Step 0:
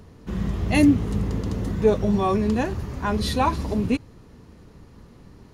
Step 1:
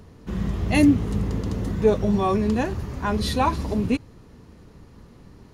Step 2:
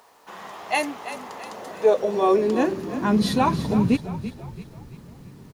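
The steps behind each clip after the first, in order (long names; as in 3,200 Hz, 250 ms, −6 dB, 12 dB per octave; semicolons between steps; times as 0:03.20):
no processing that can be heard
high-pass filter sweep 820 Hz → 140 Hz, 0:01.44–0:03.59; bit-depth reduction 10 bits, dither none; echo with shifted repeats 335 ms, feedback 46%, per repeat −35 Hz, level −12 dB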